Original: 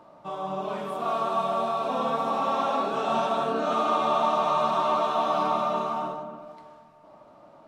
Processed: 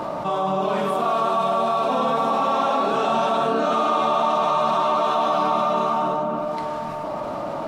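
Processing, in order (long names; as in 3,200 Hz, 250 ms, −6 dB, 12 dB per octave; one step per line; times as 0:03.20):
envelope flattener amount 70%
level +2.5 dB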